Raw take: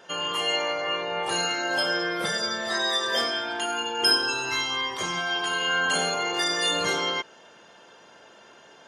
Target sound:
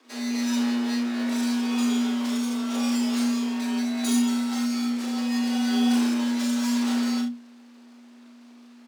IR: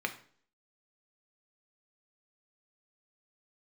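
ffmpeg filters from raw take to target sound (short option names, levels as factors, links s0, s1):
-filter_complex "[0:a]highpass=630,aemphasis=mode=reproduction:type=75kf,aeval=exprs='abs(val(0))':c=same,equalizer=f=2200:w=1:g=-5.5,asplit=2[s0][s1];[s1]adelay=26,volume=0.224[s2];[s0][s2]amix=inputs=2:normalize=0,aecho=1:1:36|70:0.631|0.335,afreqshift=240"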